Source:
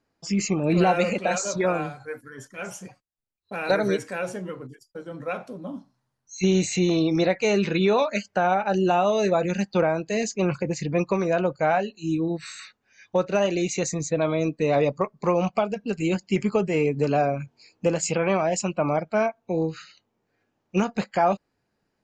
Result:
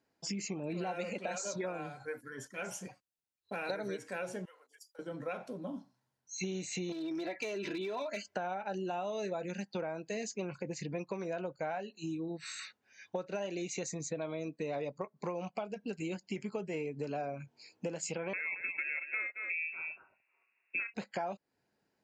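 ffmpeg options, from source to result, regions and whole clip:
-filter_complex "[0:a]asettb=1/sr,asplit=3[a][b][c];[a]atrim=end=4.454[d];[b]atrim=start=4.45:end=4.99,asetpts=PTS-STARTPTS,afade=t=in:d=0.004:c=qsin,afade=t=out:st=0.536:d=0.004:c=qsin,highshelf=f=3.9k:g=9,acompressor=threshold=-48dB:ratio=3:attack=3.2:release=140:knee=1:detection=peak,highpass=f=640:w=0.5412,highpass=f=640:w=1.3066[e];[c]atrim=start=4.986[f];[d][e]acrossfade=d=0.004:c1=hsin:c2=qsin[g];[g][f]acrossfade=d=0.004:c1=qsin:c2=hsin,asettb=1/sr,asplit=3[h][i][j];[h]atrim=end=6.924[k];[i]atrim=start=6.92:end=8.34,asetpts=PTS-STARTPTS,afade=t=in:d=0.004:c=qsin,afade=t=out:st=1.416:d=0.004:c=qsin,aecho=1:1:3:0.7,atrim=end_sample=62622,acompressor=threshold=-23dB:ratio=12:attack=3.2:release=140:knee=1:detection=peak,aeval=exprs='clip(val(0),-1,0.075)':c=same[l];[j]atrim=start=8.336[m];[k][l]acrossfade=d=0.004:c1=hsin:c2=qsin[n];[n][m]acrossfade=d=0.004:c1=qsin:c2=hsin,asettb=1/sr,asplit=3[o][p][q];[o]atrim=end=18.334[r];[p]atrim=start=18.33:end=20.94,asetpts=PTS-STARTPTS,afade=t=in:d=0.004:c=qsin,afade=t=out:st=2.606:d=0.004:c=qsin,aecho=1:1:224:0.266,atrim=end_sample=115101,lowpass=f=2.4k:t=q:w=0.5098,lowpass=f=2.4k:t=q:w=0.6013,lowpass=f=2.4k:t=q:w=0.9,lowpass=f=2.4k:t=q:w=2.563,afreqshift=-2800[s];[q]atrim=start=20.936[t];[r][s]acrossfade=d=0.004:c1=hsin:c2=qsin[u];[u][t]acrossfade=d=0.004:c1=qsin:c2=hsin,acompressor=threshold=-32dB:ratio=5,highpass=f=160:p=1,bandreject=f=1.2k:w=9.1,volume=-3dB"

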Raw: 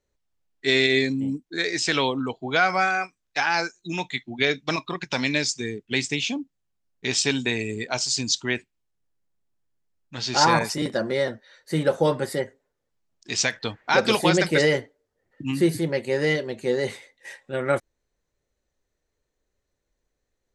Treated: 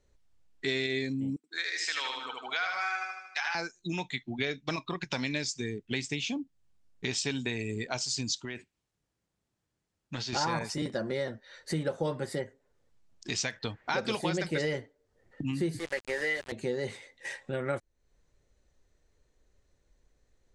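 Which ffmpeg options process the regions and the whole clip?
-filter_complex "[0:a]asettb=1/sr,asplit=3[a][b][c];[a]atrim=end=1.364[d];[b]atrim=start=1.36:end=3.55,asetpts=PTS-STARTPTS,afade=t=in:d=0.004:c=qsin,afade=t=out:st=2.186:d=0.004:c=qsin,highpass=1.2k,highshelf=f=7.5k:g=-7,aecho=1:1:77|154|231|308|385:0.668|0.274|0.112|0.0461|0.0189,atrim=end_sample=96579[e];[c]atrim=start=3.546[f];[d][e]acrossfade=d=0.004:c1=hsin:c2=qsin[g];[g][f]acrossfade=d=0.004:c1=qsin:c2=hsin,asettb=1/sr,asplit=3[h][i][j];[h]atrim=end=8.354[k];[i]atrim=start=8.35:end=10.33,asetpts=PTS-STARTPTS,afade=t=in:d=0.004:c=qsin,afade=t=out:st=1.976:d=0.004:c=qsin,highpass=f=110:p=1,acompressor=threshold=-30dB:ratio=6:attack=3.2:release=140:knee=1:detection=peak[l];[j]atrim=start=10.326[m];[k][l]acrossfade=d=0.004:c1=hsin:c2=qsin[n];[n][m]acrossfade=d=0.004:c1=qsin:c2=hsin,asettb=1/sr,asplit=3[o][p][q];[o]atrim=end=15.794[r];[p]atrim=start=15.79:end=16.52,asetpts=PTS-STARTPTS,afade=t=in:d=0.004:c=qsin,afade=t=out:st=0.726:d=0.004:c=qsin,highpass=450,equalizer=f=1.8k:w=2.6:g=9,aeval=exprs='val(0)*gte(abs(val(0)),0.0299)':c=same[s];[q]atrim=start=16.516[t];[r][s]acrossfade=d=0.004:c1=hsin:c2=qsin[u];[u][t]acrossfade=d=0.004:c1=qsin:c2=hsin,lowpass=f=9.8k:w=0.5412,lowpass=f=9.8k:w=1.3066,lowshelf=f=140:g=7.5,acompressor=threshold=-41dB:ratio=2.5,volume=4.5dB"

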